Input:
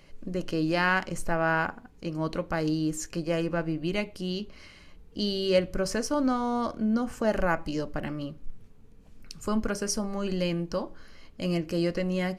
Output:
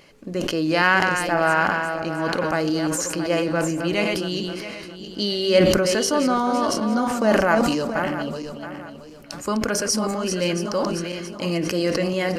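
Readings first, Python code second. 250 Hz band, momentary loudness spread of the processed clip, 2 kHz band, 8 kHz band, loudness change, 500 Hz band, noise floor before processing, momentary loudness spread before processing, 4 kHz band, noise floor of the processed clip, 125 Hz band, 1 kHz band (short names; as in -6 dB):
+6.0 dB, 14 LU, +9.0 dB, +10.5 dB, +7.5 dB, +8.0 dB, -52 dBFS, 10 LU, +10.0 dB, -39 dBFS, +4.0 dB, +9.0 dB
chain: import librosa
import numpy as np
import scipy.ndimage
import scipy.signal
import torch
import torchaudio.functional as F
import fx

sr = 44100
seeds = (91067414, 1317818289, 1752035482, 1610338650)

y = fx.reverse_delay_fb(x, sr, ms=337, feedback_pct=53, wet_db=-7.5)
y = fx.highpass(y, sr, hz=300.0, slope=6)
y = fx.wow_flutter(y, sr, seeds[0], rate_hz=2.1, depth_cents=23.0)
y = fx.sustainer(y, sr, db_per_s=28.0)
y = y * librosa.db_to_amplitude(7.0)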